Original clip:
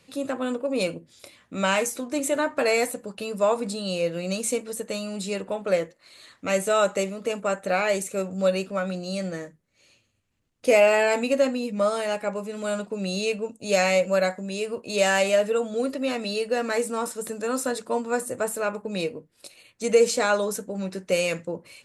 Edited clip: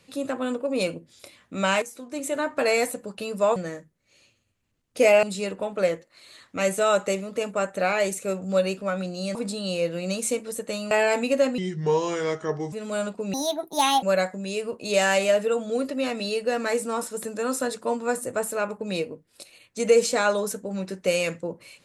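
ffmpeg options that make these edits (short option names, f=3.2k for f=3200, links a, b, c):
-filter_complex "[0:a]asplit=10[a][b][c][d][e][f][g][h][i][j];[a]atrim=end=1.82,asetpts=PTS-STARTPTS,afade=t=out:st=1.816:d=0.004:c=hsin:silence=0.211349[k];[b]atrim=start=1.82:end=3.562,asetpts=PTS-STARTPTS,afade=t=in:d=0.83:silence=0.211349[l];[c]atrim=start=9.238:end=10.912[m];[d]atrim=start=5.118:end=9.242[n];[e]atrim=start=3.558:end=5.122[o];[f]atrim=start=10.908:end=11.584[p];[g]atrim=start=11.58:end=12.45,asetpts=PTS-STARTPTS,asetrate=33516,aresample=44100[q];[h]atrim=start=12.446:end=13.064[r];[i]atrim=start=13.06:end=14.07,asetpts=PTS-STARTPTS,asetrate=64386,aresample=44100[s];[j]atrim=start=14.066[t];[k][l]concat=n=2:v=0:a=1[u];[u][m]acrossfade=d=0.004:c1=hsin:c2=hsin[v];[v][n]acrossfade=d=0.004:c1=hsin:c2=hsin[w];[w][o]acrossfade=d=0.004:c1=hsin:c2=hsin[x];[x][p]acrossfade=d=0.004:c1=hsin:c2=hsin[y];[y][q]acrossfade=d=0.004:c1=hsin:c2=hsin[z];[z][r]acrossfade=d=0.004:c1=hsin:c2=hsin[aa];[aa][s]acrossfade=d=0.004:c1=hsin:c2=hsin[ab];[ab][t]acrossfade=d=0.004:c1=hsin:c2=hsin"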